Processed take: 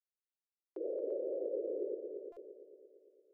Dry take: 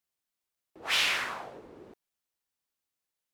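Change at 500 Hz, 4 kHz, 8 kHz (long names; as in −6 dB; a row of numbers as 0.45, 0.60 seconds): +11.0 dB, below −40 dB, below −40 dB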